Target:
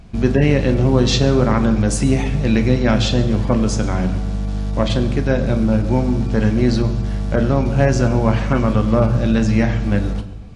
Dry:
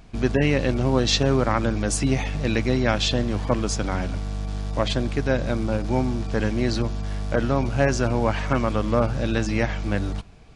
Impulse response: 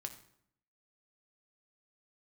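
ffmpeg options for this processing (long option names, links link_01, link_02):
-filter_complex "[0:a]asplit=2[link_01][link_02];[link_02]equalizer=frequency=170:width_type=o:width=0.51:gain=5[link_03];[1:a]atrim=start_sample=2205,asetrate=26460,aresample=44100,lowshelf=frequency=400:gain=7.5[link_04];[link_03][link_04]afir=irnorm=-1:irlink=0,volume=7.5dB[link_05];[link_01][link_05]amix=inputs=2:normalize=0,volume=-8.5dB"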